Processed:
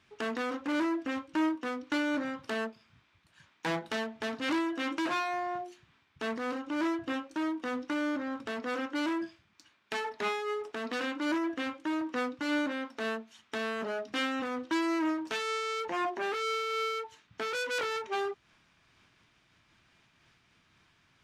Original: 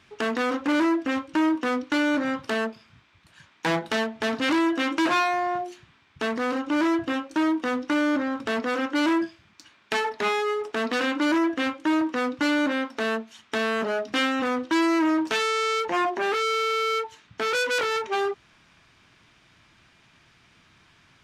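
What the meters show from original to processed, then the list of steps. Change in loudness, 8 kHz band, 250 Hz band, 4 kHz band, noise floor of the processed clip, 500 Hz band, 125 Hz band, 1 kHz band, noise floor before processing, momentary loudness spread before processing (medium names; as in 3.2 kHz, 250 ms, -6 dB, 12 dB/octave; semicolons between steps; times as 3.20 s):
-8.5 dB, -8.5 dB, -8.5 dB, -8.5 dB, -68 dBFS, -8.5 dB, -8.0 dB, -8.5 dB, -60 dBFS, 6 LU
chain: random flutter of the level, depth 55%; trim -5.5 dB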